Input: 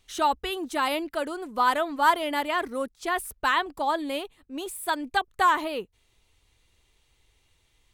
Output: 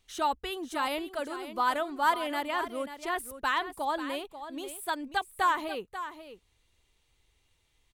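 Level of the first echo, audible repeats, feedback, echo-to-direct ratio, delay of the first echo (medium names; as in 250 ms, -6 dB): -11.5 dB, 1, no regular repeats, -11.5 dB, 539 ms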